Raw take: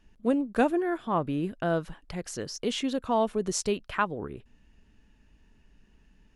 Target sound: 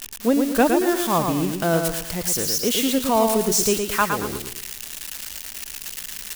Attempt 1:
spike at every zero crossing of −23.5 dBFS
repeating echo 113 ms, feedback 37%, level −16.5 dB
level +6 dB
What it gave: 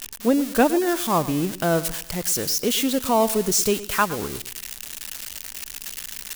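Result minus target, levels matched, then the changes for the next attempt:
echo-to-direct −11 dB
change: repeating echo 113 ms, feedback 37%, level −5.5 dB

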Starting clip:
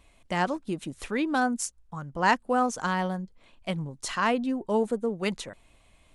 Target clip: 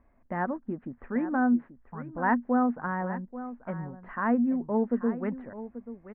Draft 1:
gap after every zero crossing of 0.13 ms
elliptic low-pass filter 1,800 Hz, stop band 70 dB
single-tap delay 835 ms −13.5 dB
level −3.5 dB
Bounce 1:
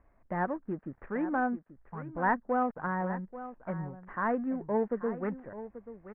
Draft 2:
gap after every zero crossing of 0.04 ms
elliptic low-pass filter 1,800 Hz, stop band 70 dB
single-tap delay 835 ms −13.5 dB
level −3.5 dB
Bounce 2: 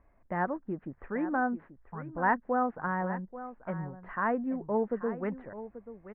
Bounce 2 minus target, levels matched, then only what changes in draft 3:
250 Hz band −3.5 dB
add after elliptic low-pass filter: parametric band 240 Hz +12 dB 0.22 octaves

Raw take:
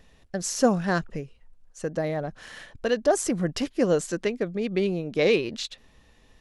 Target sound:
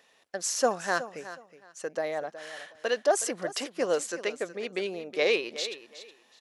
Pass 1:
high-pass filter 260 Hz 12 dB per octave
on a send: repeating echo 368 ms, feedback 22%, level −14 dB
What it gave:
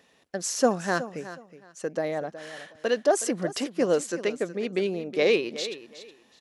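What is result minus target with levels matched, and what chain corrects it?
250 Hz band +6.0 dB
high-pass filter 530 Hz 12 dB per octave
on a send: repeating echo 368 ms, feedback 22%, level −14 dB

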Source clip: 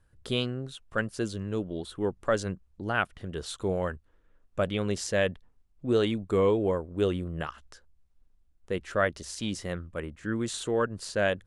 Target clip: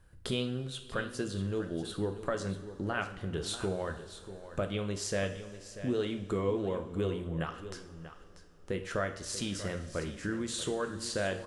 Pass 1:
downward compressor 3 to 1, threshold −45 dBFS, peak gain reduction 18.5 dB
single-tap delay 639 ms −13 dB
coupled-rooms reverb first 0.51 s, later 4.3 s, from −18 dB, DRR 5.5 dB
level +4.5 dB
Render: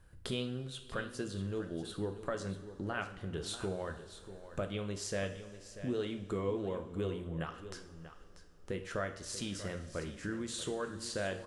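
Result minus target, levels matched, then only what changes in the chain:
downward compressor: peak gain reduction +4 dB
change: downward compressor 3 to 1, threshold −39 dBFS, peak gain reduction 14.5 dB

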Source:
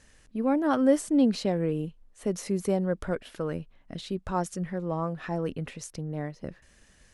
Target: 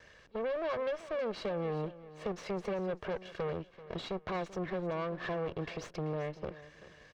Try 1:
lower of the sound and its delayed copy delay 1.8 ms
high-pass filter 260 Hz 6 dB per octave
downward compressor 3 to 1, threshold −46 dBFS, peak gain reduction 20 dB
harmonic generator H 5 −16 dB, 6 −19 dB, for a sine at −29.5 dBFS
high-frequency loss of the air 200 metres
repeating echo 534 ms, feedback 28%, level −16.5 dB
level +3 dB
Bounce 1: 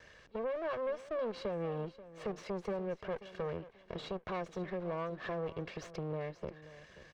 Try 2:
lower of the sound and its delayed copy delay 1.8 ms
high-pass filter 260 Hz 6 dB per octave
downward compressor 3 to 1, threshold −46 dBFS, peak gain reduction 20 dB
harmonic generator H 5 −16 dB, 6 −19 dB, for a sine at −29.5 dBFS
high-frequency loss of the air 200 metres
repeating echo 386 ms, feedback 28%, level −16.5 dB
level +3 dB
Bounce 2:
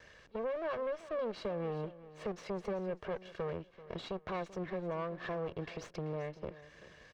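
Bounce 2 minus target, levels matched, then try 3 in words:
downward compressor: peak gain reduction +4.5 dB
lower of the sound and its delayed copy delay 1.8 ms
high-pass filter 260 Hz 6 dB per octave
downward compressor 3 to 1, threshold −39.5 dBFS, peak gain reduction 16 dB
harmonic generator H 5 −16 dB, 6 −19 dB, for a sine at −29.5 dBFS
high-frequency loss of the air 200 metres
repeating echo 386 ms, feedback 28%, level −16.5 dB
level +3 dB

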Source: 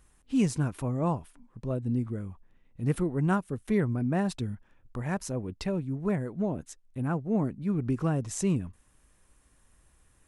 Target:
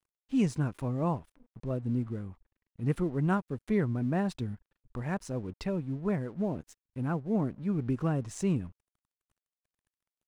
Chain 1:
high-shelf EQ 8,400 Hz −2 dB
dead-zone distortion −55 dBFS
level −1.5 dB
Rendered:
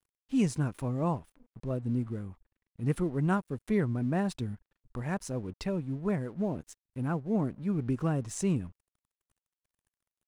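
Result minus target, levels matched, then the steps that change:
8,000 Hz band +4.5 dB
change: high-shelf EQ 8,400 Hz −12 dB

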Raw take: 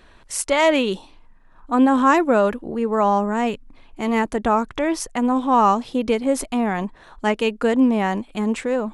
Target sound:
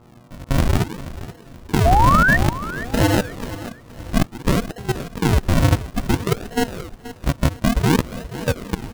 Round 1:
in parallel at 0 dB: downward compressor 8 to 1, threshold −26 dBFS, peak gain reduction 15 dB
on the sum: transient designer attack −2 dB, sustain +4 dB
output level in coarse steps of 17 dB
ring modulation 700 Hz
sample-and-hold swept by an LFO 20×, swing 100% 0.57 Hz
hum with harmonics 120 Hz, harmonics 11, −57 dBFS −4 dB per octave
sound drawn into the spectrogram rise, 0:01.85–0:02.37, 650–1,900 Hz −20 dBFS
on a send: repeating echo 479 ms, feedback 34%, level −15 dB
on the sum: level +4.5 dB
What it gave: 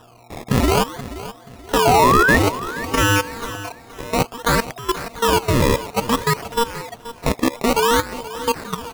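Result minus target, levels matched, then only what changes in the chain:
sample-and-hold swept by an LFO: distortion −13 dB
change: sample-and-hold swept by an LFO 73×, swing 100% 0.57 Hz

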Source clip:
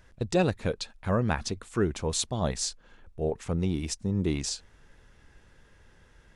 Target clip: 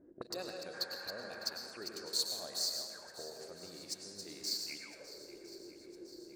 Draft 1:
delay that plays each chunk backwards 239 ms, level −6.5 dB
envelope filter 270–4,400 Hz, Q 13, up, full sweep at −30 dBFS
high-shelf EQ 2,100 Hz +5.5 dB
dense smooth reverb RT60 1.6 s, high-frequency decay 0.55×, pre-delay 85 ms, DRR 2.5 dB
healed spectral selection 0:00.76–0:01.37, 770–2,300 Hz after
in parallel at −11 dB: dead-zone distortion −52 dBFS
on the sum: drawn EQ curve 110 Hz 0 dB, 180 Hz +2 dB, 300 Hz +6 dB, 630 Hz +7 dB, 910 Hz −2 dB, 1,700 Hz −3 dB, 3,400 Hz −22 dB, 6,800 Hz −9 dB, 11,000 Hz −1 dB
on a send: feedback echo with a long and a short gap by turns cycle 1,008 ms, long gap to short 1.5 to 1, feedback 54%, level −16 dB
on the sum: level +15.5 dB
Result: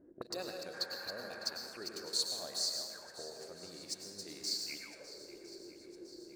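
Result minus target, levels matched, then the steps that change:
dead-zone distortion: distortion −6 dB
change: dead-zone distortion −43.5 dBFS

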